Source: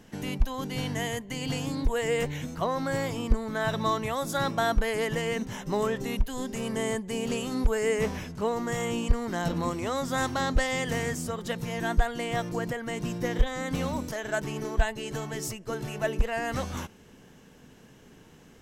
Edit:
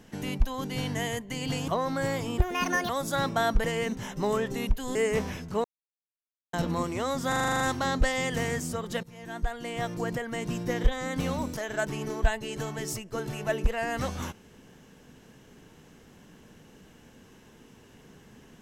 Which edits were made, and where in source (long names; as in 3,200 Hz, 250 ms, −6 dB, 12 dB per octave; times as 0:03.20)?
0:01.68–0:02.58: remove
0:03.28–0:04.11: play speed 162%
0:04.86–0:05.14: remove
0:06.45–0:07.82: remove
0:08.51–0:09.40: silence
0:10.15: stutter 0.04 s, 9 plays
0:11.58–0:12.64: fade in, from −19 dB